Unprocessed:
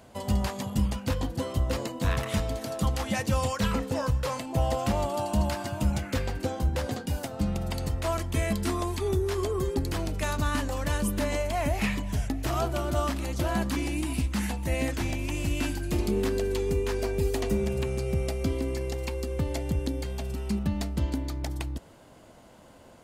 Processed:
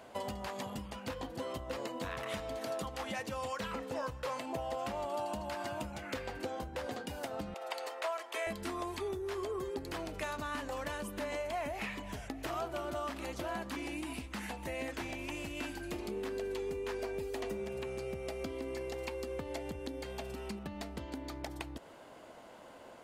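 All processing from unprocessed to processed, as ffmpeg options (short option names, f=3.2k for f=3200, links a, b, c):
-filter_complex "[0:a]asettb=1/sr,asplit=3[a][b][c];[a]atrim=end=7.544[d];[b]atrim=start=7.54:end=8.47,asetpts=PTS-STARTPTS,afade=t=in:d=0.004:c=qsin,afade=t=out:st=0.926:d=0.004:c=qsin,highpass=f=500:w=0.5412,highpass=f=500:w=1.3066,highshelf=f=5.8k:g=-5[e];[c]atrim=start=8.466[f];[d][e]acrossfade=d=0.004:c1=hsin:c2=qsin[g];[g][f]acrossfade=d=0.004:c1=qsin:c2=hsin,lowshelf=f=150:g=-5,acompressor=threshold=-35dB:ratio=6,bass=f=250:g=-10,treble=f=4k:g=-7,volume=2dB"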